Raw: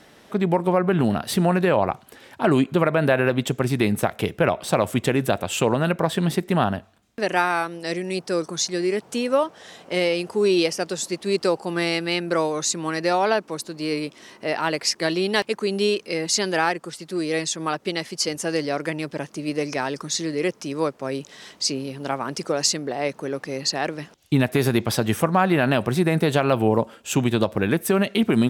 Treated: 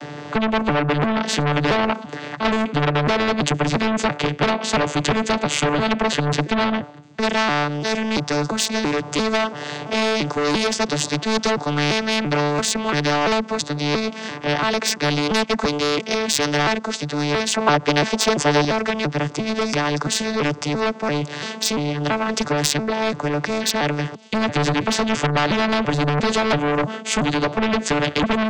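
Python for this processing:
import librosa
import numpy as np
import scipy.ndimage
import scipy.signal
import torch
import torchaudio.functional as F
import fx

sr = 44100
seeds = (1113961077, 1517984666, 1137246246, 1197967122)

y = fx.vocoder_arp(x, sr, chord='bare fifth', root=50, every_ms=340)
y = 10.0 ** (-22.0 / 20.0) * np.tanh(y / 10.0 ** (-22.0 / 20.0))
y = fx.peak_eq(y, sr, hz=760.0, db=13.0, octaves=2.4, at=(17.54, 18.65))
y = fx.spectral_comp(y, sr, ratio=2.0)
y = F.gain(torch.from_numpy(y), 6.5).numpy()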